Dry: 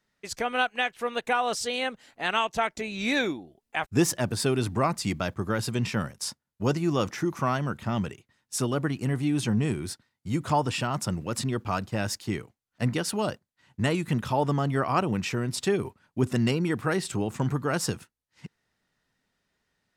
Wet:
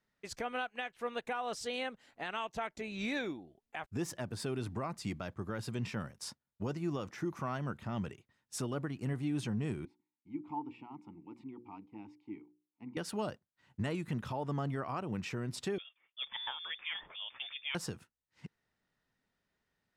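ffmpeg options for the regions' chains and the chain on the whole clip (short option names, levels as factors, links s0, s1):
-filter_complex "[0:a]asettb=1/sr,asplit=3[s0][s1][s2];[s0]atrim=end=9.854[s3];[s1]atrim=start=9.85:end=12.97,asetpts=PTS-STARTPTS,afade=t=in:d=0.004:c=qsin,afade=t=out:st=3.116:d=0.004:c=qsin,asplit=3[s4][s5][s6];[s4]bandpass=f=300:t=q:w=8,volume=1[s7];[s5]bandpass=f=870:t=q:w=8,volume=0.501[s8];[s6]bandpass=f=2240:t=q:w=8,volume=0.355[s9];[s7][s8][s9]amix=inputs=3:normalize=0,highshelf=f=3600:g=-8.5,bandreject=f=60:t=h:w=6,bandreject=f=120:t=h:w=6,bandreject=f=180:t=h:w=6,bandreject=f=240:t=h:w=6,bandreject=f=300:t=h:w=6,bandreject=f=360:t=h:w=6,bandreject=f=420:t=h:w=6,bandreject=f=480:t=h:w=6,bandreject=f=540:t=h:w=6[s10];[s2]atrim=start=12.966[s11];[s3][s10]acrossfade=d=0.004:c1=hsin:c2=qsin[s12];[s12][s11]acrossfade=d=0.004:c1=qsin:c2=hsin,asettb=1/sr,asplit=3[s13][s14][s15];[s13]atrim=end=15.784[s16];[s14]atrim=start=15.78:end=17.75,asetpts=PTS-STARTPTS,afade=t=in:d=0.004:c=qsin,afade=t=out:st=1.966:d=0.004:c=qsin,highpass=f=710:p=1,lowpass=f=3100:t=q:w=0.5098,lowpass=f=3100:t=q:w=0.6013,lowpass=f=3100:t=q:w=0.9,lowpass=f=3100:t=q:w=2.563,afreqshift=-3700[s17];[s15]atrim=start=17.746[s18];[s16][s17]acrossfade=d=0.004:c1=hsin:c2=qsin[s19];[s19][s18]acrossfade=d=0.004:c1=qsin:c2=hsin,highshelf=f=4000:g=-6.5,alimiter=limit=0.0841:level=0:latency=1:release=351,volume=0.531"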